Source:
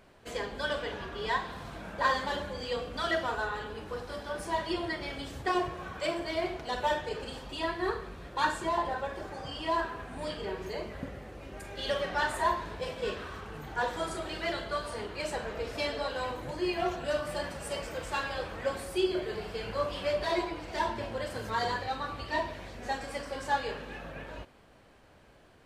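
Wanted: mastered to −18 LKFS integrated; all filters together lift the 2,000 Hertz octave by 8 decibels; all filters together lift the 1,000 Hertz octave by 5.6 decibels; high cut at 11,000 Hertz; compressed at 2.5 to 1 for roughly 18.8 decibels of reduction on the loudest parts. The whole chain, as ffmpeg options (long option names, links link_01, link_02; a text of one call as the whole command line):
ffmpeg -i in.wav -af "lowpass=11000,equalizer=frequency=1000:width_type=o:gain=4.5,equalizer=frequency=2000:width_type=o:gain=8.5,acompressor=threshold=-47dB:ratio=2.5,volume=25dB" out.wav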